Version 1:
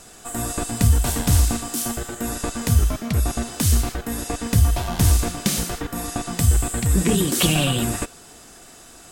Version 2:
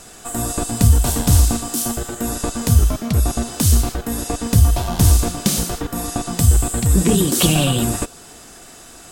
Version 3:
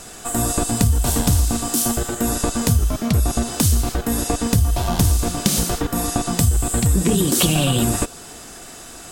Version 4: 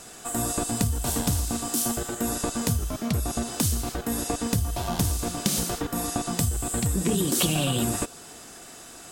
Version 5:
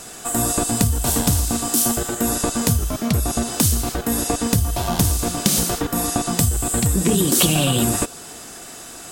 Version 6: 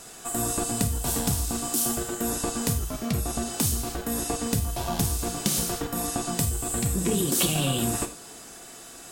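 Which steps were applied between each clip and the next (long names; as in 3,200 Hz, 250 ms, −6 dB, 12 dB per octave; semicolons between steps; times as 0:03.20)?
dynamic equaliser 2,000 Hz, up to −6 dB, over −43 dBFS, Q 1.3; level +4 dB
downward compressor 4 to 1, threshold −17 dBFS, peak gain reduction 9 dB; level +3 dB
low-shelf EQ 62 Hz −10.5 dB; level −6 dB
high-shelf EQ 10,000 Hz +3.5 dB; level +6.5 dB
convolution reverb, pre-delay 3 ms, DRR 6 dB; level −8 dB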